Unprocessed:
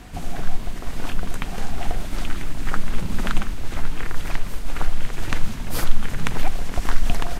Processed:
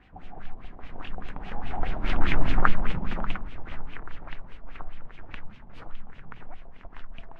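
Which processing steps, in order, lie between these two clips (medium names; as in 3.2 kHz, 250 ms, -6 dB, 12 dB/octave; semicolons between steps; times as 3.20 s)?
Doppler pass-by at 2.40 s, 14 m/s, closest 2.9 m; LFO low-pass sine 4.9 Hz 760–3000 Hz; trim +5 dB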